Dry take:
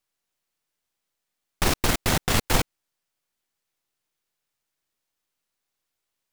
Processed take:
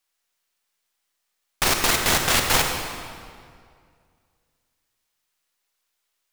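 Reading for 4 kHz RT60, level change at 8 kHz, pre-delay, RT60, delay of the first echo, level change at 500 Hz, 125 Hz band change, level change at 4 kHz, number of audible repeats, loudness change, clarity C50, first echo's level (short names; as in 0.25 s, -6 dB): 1.6 s, +6.0 dB, 35 ms, 2.1 s, none, +1.5 dB, -4.0 dB, +6.0 dB, none, +4.0 dB, 4.0 dB, none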